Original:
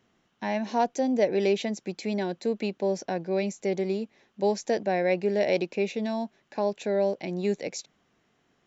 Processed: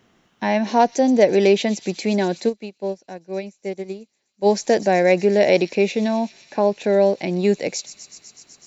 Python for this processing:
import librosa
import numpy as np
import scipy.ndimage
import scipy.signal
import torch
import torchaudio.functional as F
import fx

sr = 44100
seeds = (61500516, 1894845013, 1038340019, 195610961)

y = fx.high_shelf(x, sr, hz=3900.0, db=-9.5, at=(6.08, 6.84))
y = fx.echo_wet_highpass(y, sr, ms=125, feedback_pct=83, hz=5400.0, wet_db=-8.5)
y = fx.upward_expand(y, sr, threshold_db=-35.0, expansion=2.5, at=(2.48, 4.45), fade=0.02)
y = y * librosa.db_to_amplitude(9.0)